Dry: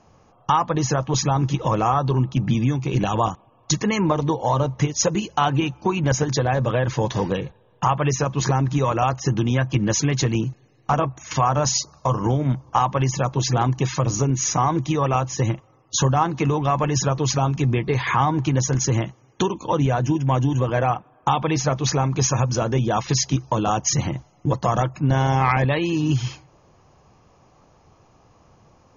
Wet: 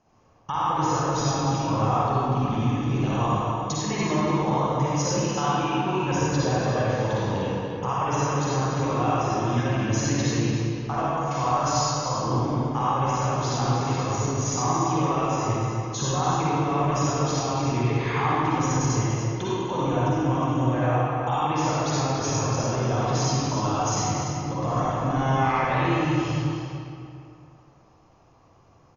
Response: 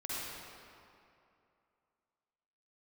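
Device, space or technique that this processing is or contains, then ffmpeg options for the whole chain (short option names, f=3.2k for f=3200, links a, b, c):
cave: -filter_complex "[0:a]aecho=1:1:290:0.376[a];[1:a]atrim=start_sample=2205[b];[a][b]afir=irnorm=-1:irlink=0,volume=-6dB"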